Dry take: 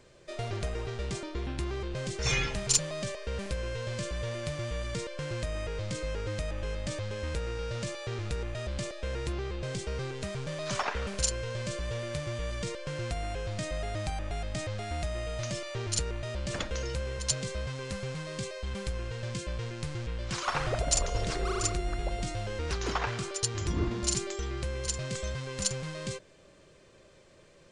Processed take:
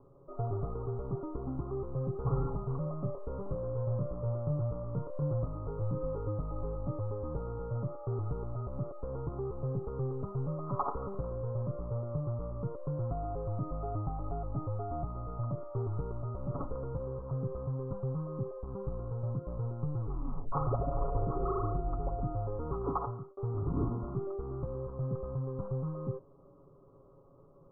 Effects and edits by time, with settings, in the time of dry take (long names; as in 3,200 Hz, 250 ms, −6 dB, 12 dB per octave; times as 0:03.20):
0:02.83–0:06.19: double-tracking delay 27 ms −6 dB
0:20.00: tape stop 0.52 s
0:22.91–0:23.37: fade out
whole clip: Chebyshev low-pass filter 1,300 Hz, order 8; parametric band 630 Hz −7.5 dB 0.3 octaves; comb filter 7.2 ms, depth 62%